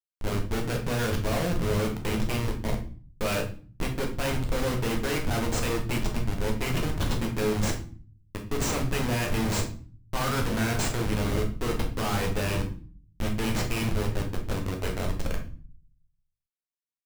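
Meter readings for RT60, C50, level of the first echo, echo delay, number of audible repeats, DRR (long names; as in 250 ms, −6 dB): 0.45 s, 8.5 dB, no echo audible, no echo audible, no echo audible, 1.0 dB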